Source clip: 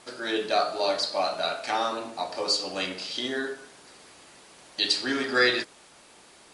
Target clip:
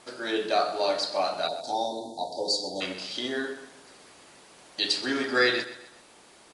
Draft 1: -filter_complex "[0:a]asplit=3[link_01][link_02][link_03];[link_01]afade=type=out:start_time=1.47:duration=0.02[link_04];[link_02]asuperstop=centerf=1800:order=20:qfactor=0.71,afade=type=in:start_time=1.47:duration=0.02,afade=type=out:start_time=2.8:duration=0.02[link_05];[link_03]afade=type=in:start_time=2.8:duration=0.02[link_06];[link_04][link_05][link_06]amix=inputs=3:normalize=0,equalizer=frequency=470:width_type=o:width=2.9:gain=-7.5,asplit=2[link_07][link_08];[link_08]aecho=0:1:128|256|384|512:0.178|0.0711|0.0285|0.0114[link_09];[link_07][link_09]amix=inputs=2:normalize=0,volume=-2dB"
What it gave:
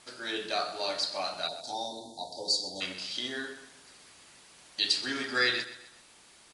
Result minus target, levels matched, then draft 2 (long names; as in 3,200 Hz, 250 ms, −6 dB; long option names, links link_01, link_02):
500 Hz band −5.5 dB
-filter_complex "[0:a]asplit=3[link_01][link_02][link_03];[link_01]afade=type=out:start_time=1.47:duration=0.02[link_04];[link_02]asuperstop=centerf=1800:order=20:qfactor=0.71,afade=type=in:start_time=1.47:duration=0.02,afade=type=out:start_time=2.8:duration=0.02[link_05];[link_03]afade=type=in:start_time=2.8:duration=0.02[link_06];[link_04][link_05][link_06]amix=inputs=3:normalize=0,equalizer=frequency=470:width_type=o:width=2.9:gain=2,asplit=2[link_07][link_08];[link_08]aecho=0:1:128|256|384|512:0.178|0.0711|0.0285|0.0114[link_09];[link_07][link_09]amix=inputs=2:normalize=0,volume=-2dB"